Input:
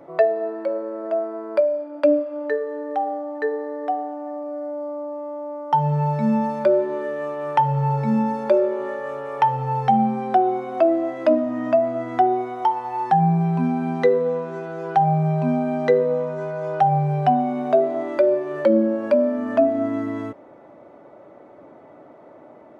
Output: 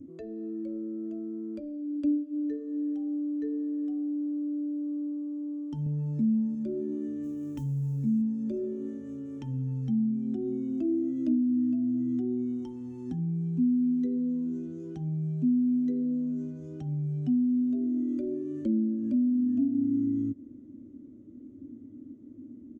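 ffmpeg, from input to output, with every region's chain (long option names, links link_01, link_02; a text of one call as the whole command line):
ffmpeg -i in.wav -filter_complex "[0:a]asettb=1/sr,asplit=3[link_01][link_02][link_03];[link_01]atrim=end=5.864[link_04];[link_02]atrim=start=5.86:end=6.55,asetpts=PTS-STARTPTS,afade=type=in:duration=0.004:curve=qsin,afade=type=out:start_time=0.686:duration=0.004:curve=qsin,asuperstop=centerf=690:order=4:qfactor=6.9,equalizer=frequency=570:width=0.66:gain=7[link_05];[link_03]atrim=start=6.546[link_06];[link_04][link_05]acrossfade=duration=0.004:curve1=hsin:curve2=qsin[link_07];[link_07][link_06]acrossfade=duration=0.004:curve1=qsin:curve2=hsin,asettb=1/sr,asplit=3[link_08][link_09][link_10];[link_08]atrim=end=7.234[link_11];[link_09]atrim=start=7.23:end=8.22,asetpts=PTS-STARTPTS,afade=type=in:duration=0.004:curve=qsin,afade=type=out:start_time=0.986:duration=0.004:curve=qsin,equalizer=frequency=62:width=2.8:gain=13,bandreject=frequency=60:width_type=h:width=6,bandreject=frequency=120:width_type=h:width=6,bandreject=frequency=180:width_type=h:width=6,bandreject=frequency=240:width_type=h:width=6,acrusher=bits=8:mode=log:mix=0:aa=0.000001[link_12];[link_10]atrim=start=8.216[link_13];[link_11][link_12]acrossfade=duration=0.004:curve1=hsin:curve2=qsin[link_14];[link_14][link_13]acrossfade=duration=0.004:curve1=qsin:curve2=hsin,firequalizer=gain_entry='entry(100,0);entry(160,-17);entry(250,2);entry(390,-28);entry(770,-29);entry(2000,-25);entry(3100,-15);entry(4600,-16);entry(6600,-1);entry(9400,-10)':delay=0.05:min_phase=1,acompressor=threshold=-39dB:ratio=3,lowshelf=frequency=540:width_type=q:width=3:gain=11.5,volume=-3.5dB" out.wav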